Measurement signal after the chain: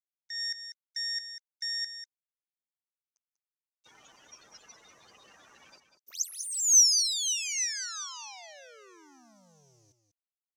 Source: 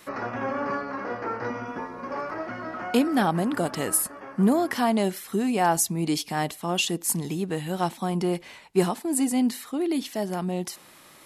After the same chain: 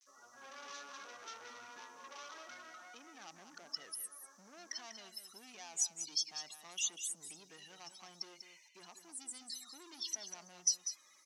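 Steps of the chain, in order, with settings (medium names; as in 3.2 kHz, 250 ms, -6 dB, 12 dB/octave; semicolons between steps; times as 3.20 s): tracing distortion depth 0.033 ms; gate with hold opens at -42 dBFS; level rider gain up to 16 dB; peak limiter -8 dBFS; loudest bins only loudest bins 32; saturation -16.5 dBFS; bit crusher 9-bit; band-pass filter 6 kHz, Q 8.1; on a send: delay 194 ms -9.5 dB; on the sum: trim +3.5 dB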